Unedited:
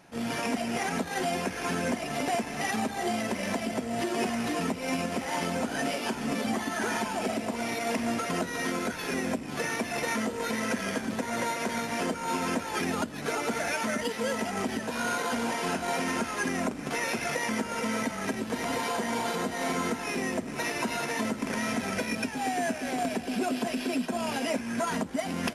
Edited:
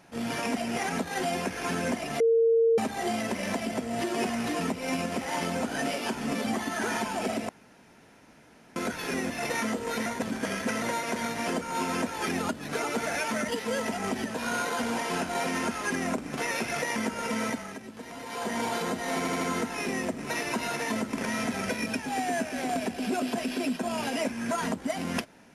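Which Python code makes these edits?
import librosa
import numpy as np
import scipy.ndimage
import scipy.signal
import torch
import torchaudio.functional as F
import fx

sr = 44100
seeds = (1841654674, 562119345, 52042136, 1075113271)

y = fx.edit(x, sr, fx.bleep(start_s=2.2, length_s=0.58, hz=457.0, db=-18.5),
    fx.room_tone_fill(start_s=7.49, length_s=1.27),
    fx.cut(start_s=9.3, length_s=0.53),
    fx.reverse_span(start_s=10.59, length_s=0.76),
    fx.fade_down_up(start_s=18.01, length_s=1.05, db=-10.5, fade_s=0.28),
    fx.stutter(start_s=19.7, slice_s=0.08, count=4), tone=tone)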